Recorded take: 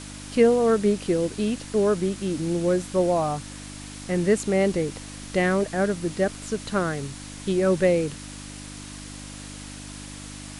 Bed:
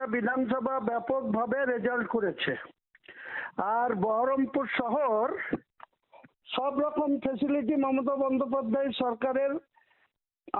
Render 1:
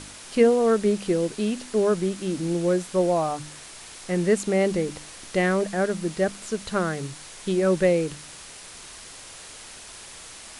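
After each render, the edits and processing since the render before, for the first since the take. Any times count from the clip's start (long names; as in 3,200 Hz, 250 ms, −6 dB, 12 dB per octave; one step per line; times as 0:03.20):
hum removal 50 Hz, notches 6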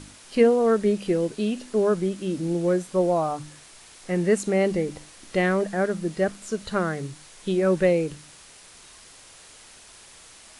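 noise reduction from a noise print 6 dB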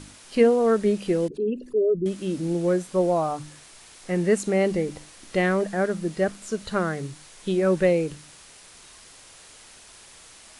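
0:01.28–0:02.06: spectral envelope exaggerated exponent 3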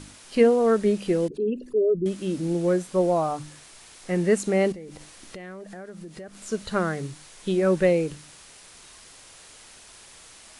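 0:04.72–0:06.46: downward compressor 8 to 1, threshold −37 dBFS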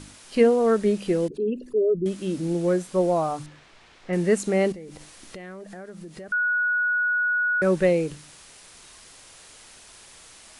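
0:03.46–0:04.13: low-pass filter 3,100 Hz
0:06.32–0:07.62: beep over 1,460 Hz −20 dBFS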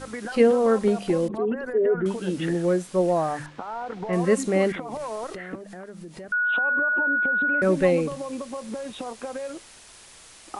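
mix in bed −5.5 dB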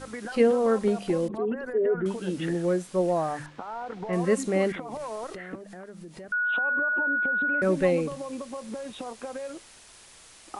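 level −3 dB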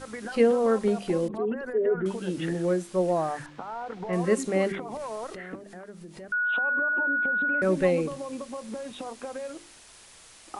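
hum removal 49.3 Hz, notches 8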